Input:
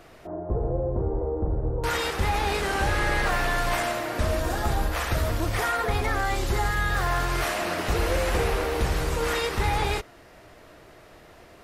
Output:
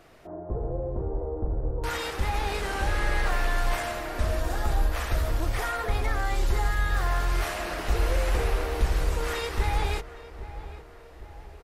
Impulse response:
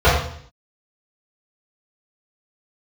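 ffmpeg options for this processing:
-filter_complex "[0:a]asubboost=boost=3.5:cutoff=61,asplit=2[s0][s1];[s1]adelay=811,lowpass=f=1800:p=1,volume=0.2,asplit=2[s2][s3];[s3]adelay=811,lowpass=f=1800:p=1,volume=0.53,asplit=2[s4][s5];[s5]adelay=811,lowpass=f=1800:p=1,volume=0.53,asplit=2[s6][s7];[s7]adelay=811,lowpass=f=1800:p=1,volume=0.53,asplit=2[s8][s9];[s9]adelay=811,lowpass=f=1800:p=1,volume=0.53[s10];[s2][s4][s6][s8][s10]amix=inputs=5:normalize=0[s11];[s0][s11]amix=inputs=2:normalize=0,volume=0.596"

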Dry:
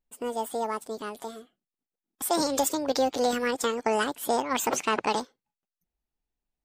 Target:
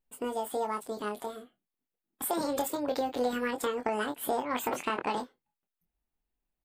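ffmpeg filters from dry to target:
-filter_complex "[0:a]asetnsamples=n=441:p=0,asendcmd='1.23 equalizer g -13.5',equalizer=f=6000:w=1.6:g=-6.5,acompressor=threshold=0.0316:ratio=2.5,asplit=2[s0][s1];[s1]adelay=24,volume=0.473[s2];[s0][s2]amix=inputs=2:normalize=0"

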